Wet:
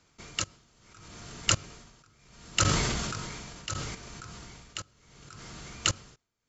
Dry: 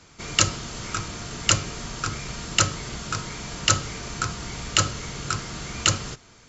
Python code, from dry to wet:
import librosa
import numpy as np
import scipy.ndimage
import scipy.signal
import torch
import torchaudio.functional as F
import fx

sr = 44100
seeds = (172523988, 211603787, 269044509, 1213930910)

y = fx.level_steps(x, sr, step_db=22)
y = y * (1.0 - 0.9 / 2.0 + 0.9 / 2.0 * np.cos(2.0 * np.pi * 0.71 * (np.arange(len(y)) / sr)))
y = fx.sustainer(y, sr, db_per_s=25.0, at=(1.95, 3.95))